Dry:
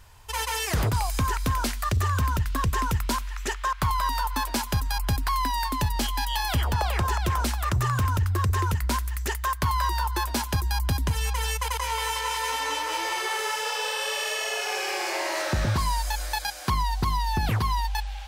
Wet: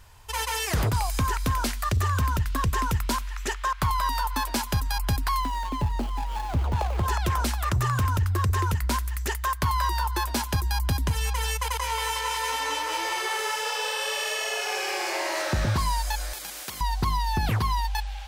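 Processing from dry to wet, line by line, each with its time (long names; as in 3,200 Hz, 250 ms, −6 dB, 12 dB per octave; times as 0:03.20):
0:05.40–0:07.06: running median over 25 samples
0:16.33–0:16.81: every bin compressed towards the loudest bin 4 to 1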